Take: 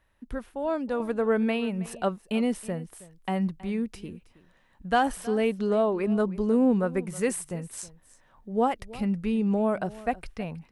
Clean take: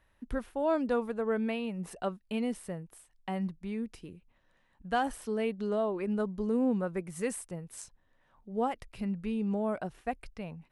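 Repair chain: inverse comb 0.32 s -19 dB; gain 0 dB, from 1 s -6.5 dB

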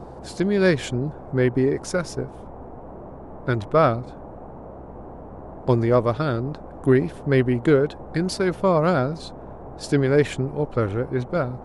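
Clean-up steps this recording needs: de-hum 64.9 Hz, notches 4; noise print and reduce 27 dB

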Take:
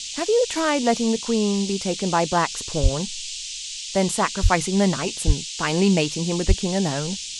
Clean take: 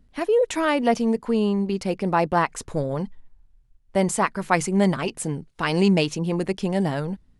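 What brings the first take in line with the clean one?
de-plosive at 2.82/4.42/5.26/6.47; noise print and reduce 21 dB

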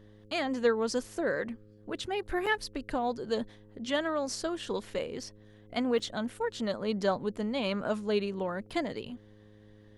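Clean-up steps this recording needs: de-hum 105.2 Hz, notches 5; interpolate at 2.46/5.99/8.7, 5.8 ms

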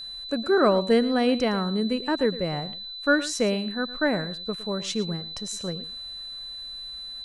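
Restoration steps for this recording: notch 4000 Hz, Q 30; inverse comb 0.112 s -16 dB

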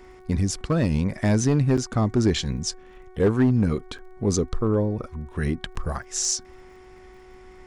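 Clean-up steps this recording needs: clip repair -13 dBFS; de-click; de-hum 370.8 Hz, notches 6; interpolate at 1.77/3.98/5.75, 6.5 ms

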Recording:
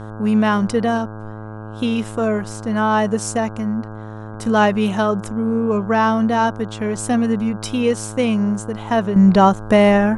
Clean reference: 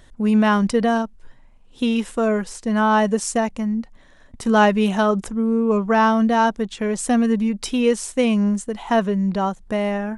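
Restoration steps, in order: de-hum 108 Hz, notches 15; gain correction -10 dB, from 9.16

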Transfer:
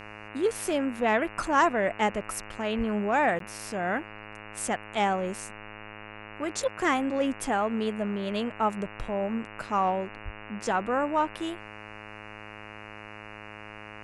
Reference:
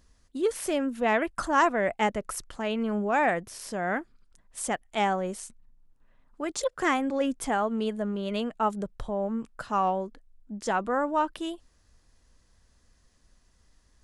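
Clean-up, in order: de-hum 105.9 Hz, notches 27; 2.77–2.89 HPF 140 Hz 24 dB/oct; 10.24–10.36 HPF 140 Hz 24 dB/oct; interpolate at 3.39, 13 ms

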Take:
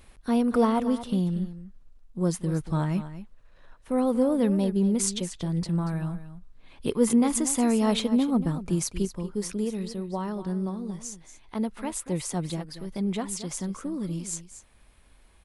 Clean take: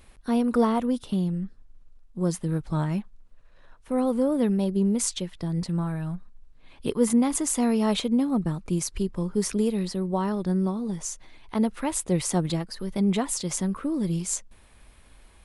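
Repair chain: inverse comb 0.234 s -13 dB; gain 0 dB, from 9.05 s +5 dB

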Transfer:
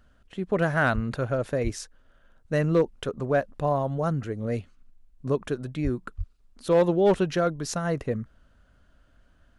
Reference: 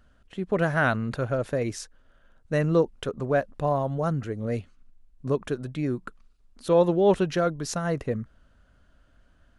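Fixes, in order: clip repair -13.5 dBFS; de-plosive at 0.94/1.63/5.83/6.17

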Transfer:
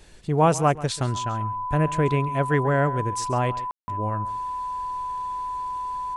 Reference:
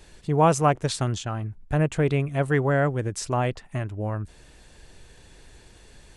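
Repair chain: notch 1000 Hz, Q 30; room tone fill 3.71–3.88; inverse comb 0.136 s -17.5 dB

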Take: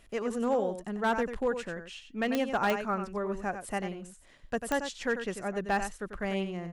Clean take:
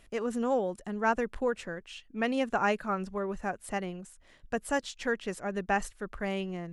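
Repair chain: clip repair -21 dBFS; de-click; inverse comb 93 ms -9 dB

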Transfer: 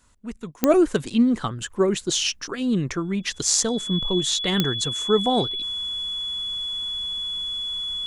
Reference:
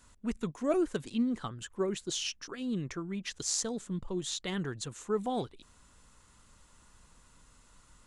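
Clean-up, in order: de-click; notch 3400 Hz, Q 30; gain 0 dB, from 0.63 s -11.5 dB

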